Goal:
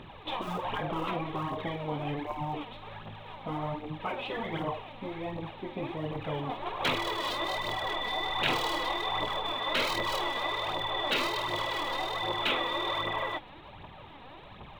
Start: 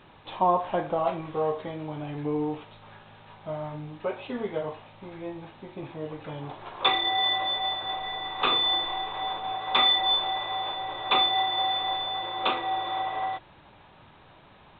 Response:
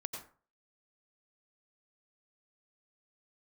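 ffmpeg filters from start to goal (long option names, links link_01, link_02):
-af "equalizer=frequency=1500:width=5.5:gain=-7,aphaser=in_gain=1:out_gain=1:delay=4.3:decay=0.56:speed=1.3:type=triangular,afftfilt=real='re*lt(hypot(re,im),0.141)':imag='im*lt(hypot(re,im),0.141)':win_size=1024:overlap=0.75,volume=4dB"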